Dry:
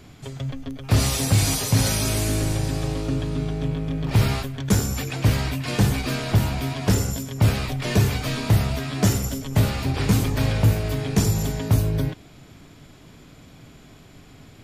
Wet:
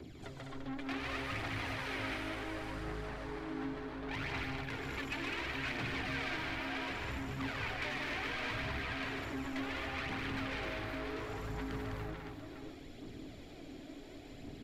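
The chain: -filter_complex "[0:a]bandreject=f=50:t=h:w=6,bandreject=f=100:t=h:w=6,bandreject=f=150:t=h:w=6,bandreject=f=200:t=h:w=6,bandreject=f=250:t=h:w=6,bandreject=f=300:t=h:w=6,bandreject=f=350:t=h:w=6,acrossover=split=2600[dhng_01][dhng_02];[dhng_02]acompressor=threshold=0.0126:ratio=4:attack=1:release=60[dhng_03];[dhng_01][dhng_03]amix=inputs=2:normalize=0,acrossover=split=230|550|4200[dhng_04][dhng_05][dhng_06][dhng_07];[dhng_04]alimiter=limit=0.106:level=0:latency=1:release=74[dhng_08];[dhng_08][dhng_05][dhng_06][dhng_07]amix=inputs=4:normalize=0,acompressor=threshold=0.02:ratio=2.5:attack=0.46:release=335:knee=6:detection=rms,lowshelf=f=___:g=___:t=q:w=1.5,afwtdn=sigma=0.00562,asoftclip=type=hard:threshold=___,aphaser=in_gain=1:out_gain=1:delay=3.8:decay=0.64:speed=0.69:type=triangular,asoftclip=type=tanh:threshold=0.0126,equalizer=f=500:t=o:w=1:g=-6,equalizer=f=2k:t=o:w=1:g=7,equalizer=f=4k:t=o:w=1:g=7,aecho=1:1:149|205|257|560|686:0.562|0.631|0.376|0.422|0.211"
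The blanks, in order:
230, -9, 0.0112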